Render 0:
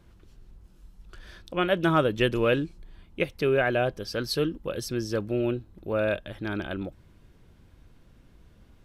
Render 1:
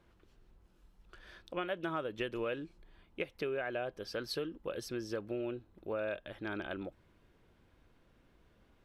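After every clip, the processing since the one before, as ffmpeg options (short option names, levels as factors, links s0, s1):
-af "bass=f=250:g=-9,treble=f=4000:g=-7,acompressor=threshold=0.0355:ratio=6,volume=0.596"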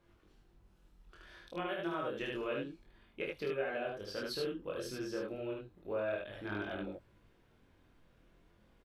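-filter_complex "[0:a]flanger=delay=20:depth=3.4:speed=0.29,asplit=2[s0][s1];[s1]aecho=0:1:29.15|75.8:0.562|0.794[s2];[s0][s2]amix=inputs=2:normalize=0"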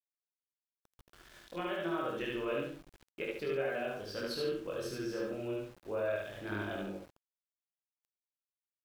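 -filter_complex "[0:a]asplit=2[s0][s1];[s1]adelay=67,lowpass=f=4300:p=1,volume=0.631,asplit=2[s2][s3];[s3]adelay=67,lowpass=f=4300:p=1,volume=0.3,asplit=2[s4][s5];[s5]adelay=67,lowpass=f=4300:p=1,volume=0.3,asplit=2[s6][s7];[s7]adelay=67,lowpass=f=4300:p=1,volume=0.3[s8];[s0][s2][s4][s6][s8]amix=inputs=5:normalize=0,aeval=exprs='val(0)*gte(abs(val(0)),0.00224)':c=same"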